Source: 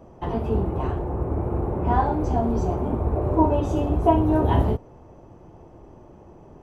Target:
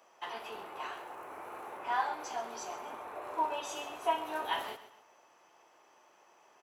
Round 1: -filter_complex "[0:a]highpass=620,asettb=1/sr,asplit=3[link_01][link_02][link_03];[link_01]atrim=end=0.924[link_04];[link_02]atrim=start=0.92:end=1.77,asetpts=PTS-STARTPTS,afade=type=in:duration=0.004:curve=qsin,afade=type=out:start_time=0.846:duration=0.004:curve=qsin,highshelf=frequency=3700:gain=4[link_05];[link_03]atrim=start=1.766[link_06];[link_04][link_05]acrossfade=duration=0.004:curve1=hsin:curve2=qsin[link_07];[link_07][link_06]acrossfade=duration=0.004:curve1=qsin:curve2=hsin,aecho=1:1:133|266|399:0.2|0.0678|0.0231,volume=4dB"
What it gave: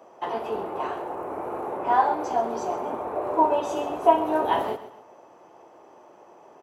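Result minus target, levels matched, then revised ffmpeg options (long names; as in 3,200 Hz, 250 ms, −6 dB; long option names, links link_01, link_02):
2,000 Hz band −8.5 dB
-filter_complex "[0:a]highpass=1800,asettb=1/sr,asplit=3[link_01][link_02][link_03];[link_01]atrim=end=0.924[link_04];[link_02]atrim=start=0.92:end=1.77,asetpts=PTS-STARTPTS,afade=type=in:duration=0.004:curve=qsin,afade=type=out:start_time=0.846:duration=0.004:curve=qsin,highshelf=frequency=3700:gain=4[link_05];[link_03]atrim=start=1.766[link_06];[link_04][link_05]acrossfade=duration=0.004:curve1=hsin:curve2=qsin[link_07];[link_07][link_06]acrossfade=duration=0.004:curve1=qsin:curve2=hsin,aecho=1:1:133|266|399:0.2|0.0678|0.0231,volume=4dB"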